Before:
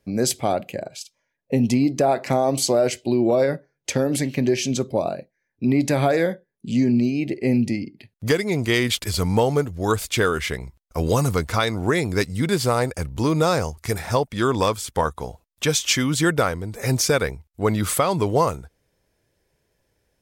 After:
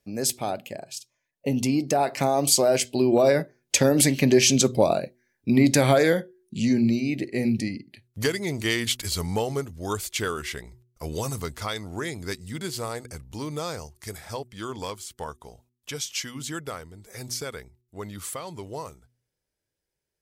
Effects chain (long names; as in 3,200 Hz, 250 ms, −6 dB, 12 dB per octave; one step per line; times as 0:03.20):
source passing by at 0:04.66, 15 m/s, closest 22 metres
high-shelf EQ 2,900 Hz +7.5 dB
hum removal 122.1 Hz, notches 3
level +2.5 dB